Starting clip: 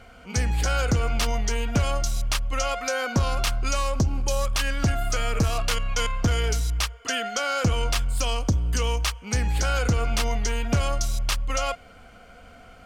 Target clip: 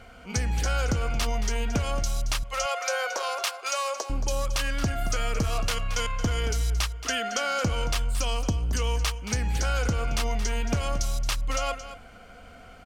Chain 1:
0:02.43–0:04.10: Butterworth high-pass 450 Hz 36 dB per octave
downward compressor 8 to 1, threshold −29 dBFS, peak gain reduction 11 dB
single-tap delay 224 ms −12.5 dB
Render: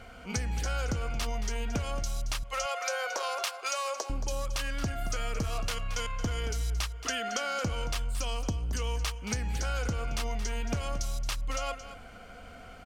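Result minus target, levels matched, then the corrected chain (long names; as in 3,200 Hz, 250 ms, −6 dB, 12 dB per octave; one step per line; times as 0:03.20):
downward compressor: peak gain reduction +5.5 dB
0:02.43–0:04.10: Butterworth high-pass 450 Hz 36 dB per octave
downward compressor 8 to 1, threshold −22.5 dBFS, peak gain reduction 5.5 dB
single-tap delay 224 ms −12.5 dB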